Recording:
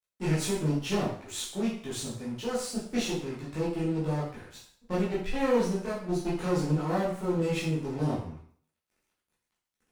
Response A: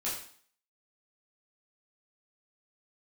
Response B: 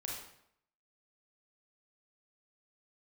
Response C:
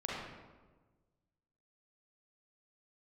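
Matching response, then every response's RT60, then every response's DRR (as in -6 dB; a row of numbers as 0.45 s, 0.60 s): A; 0.50 s, 0.70 s, 1.3 s; -8.5 dB, -3.0 dB, -5.5 dB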